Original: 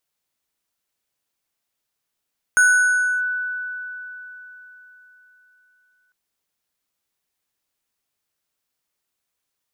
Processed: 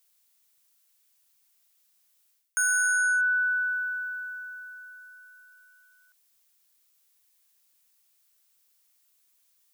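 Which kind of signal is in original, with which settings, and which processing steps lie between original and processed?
FM tone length 3.55 s, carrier 1490 Hz, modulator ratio 5.4, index 0.53, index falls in 0.65 s linear, decay 3.98 s, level -10 dB
tilt +3.5 dB/oct; reverse; compressor 8:1, threshold -22 dBFS; reverse

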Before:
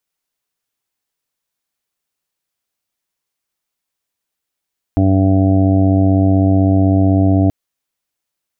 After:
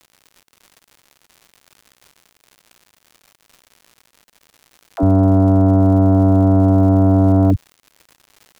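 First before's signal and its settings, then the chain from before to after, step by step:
steady additive tone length 2.53 s, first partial 95.9 Hz, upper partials -7/-1/-18/-18.5/-18.5/-9/-19.5 dB, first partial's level -12 dB
tracing distortion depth 0.37 ms; dispersion lows, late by 64 ms, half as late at 310 Hz; crackle 180/s -34 dBFS

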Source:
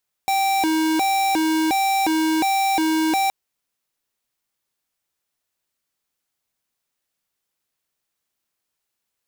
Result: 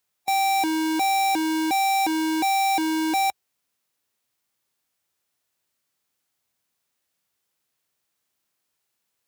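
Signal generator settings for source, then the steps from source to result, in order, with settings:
siren hi-lo 317–780 Hz 1.4/s square -19.5 dBFS 3.02 s
HPF 65 Hz 24 dB/oct; harmonic-percussive split harmonic +4 dB; limiter -18.5 dBFS

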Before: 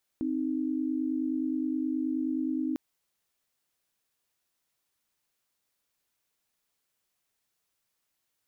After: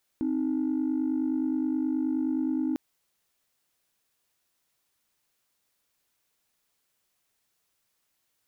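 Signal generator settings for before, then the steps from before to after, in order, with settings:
chord C4/D#4 sine, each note -30 dBFS 2.55 s
in parallel at -4.5 dB: soft clip -32.5 dBFS

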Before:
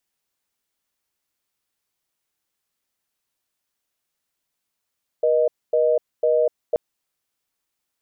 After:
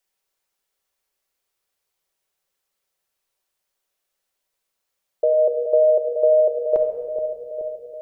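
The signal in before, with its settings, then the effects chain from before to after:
call progress tone reorder tone, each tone -18 dBFS 1.53 s
ten-band EQ 125 Hz -6 dB, 250 Hz -8 dB, 500 Hz +5 dB; on a send: analogue delay 0.425 s, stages 2048, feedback 69%, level -9 dB; on the sum: shoebox room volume 2000 m³, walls mixed, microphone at 1.1 m

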